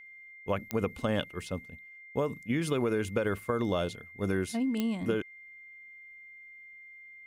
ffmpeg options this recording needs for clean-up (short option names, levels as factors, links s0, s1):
-af "adeclick=t=4,bandreject=f=2100:w=30"